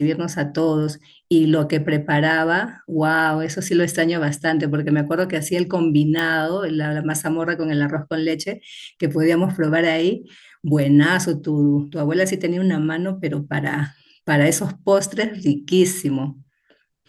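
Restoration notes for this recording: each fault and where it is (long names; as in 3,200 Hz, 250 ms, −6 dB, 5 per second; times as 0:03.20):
0:06.19: click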